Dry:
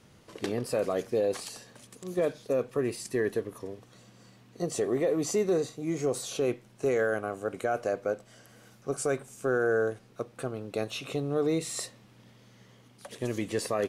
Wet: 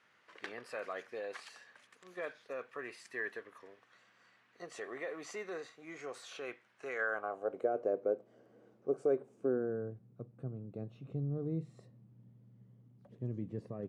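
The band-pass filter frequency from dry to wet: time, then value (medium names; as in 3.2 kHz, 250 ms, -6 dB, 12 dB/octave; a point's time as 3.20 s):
band-pass filter, Q 1.8
6.93 s 1.7 kHz
7.73 s 400 Hz
9.35 s 400 Hz
9.85 s 140 Hz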